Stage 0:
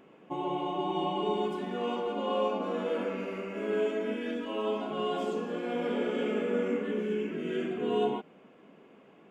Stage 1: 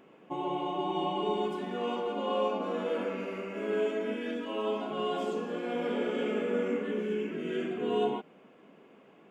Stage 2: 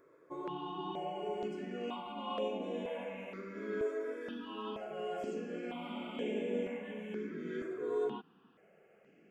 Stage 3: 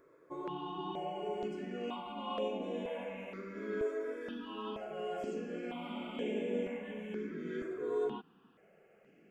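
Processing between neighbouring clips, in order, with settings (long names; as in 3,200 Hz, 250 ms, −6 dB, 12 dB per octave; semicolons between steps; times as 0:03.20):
low-shelf EQ 190 Hz −3 dB
step-sequenced phaser 2.1 Hz 780–4,700 Hz; level −4 dB
low-shelf EQ 62 Hz +7 dB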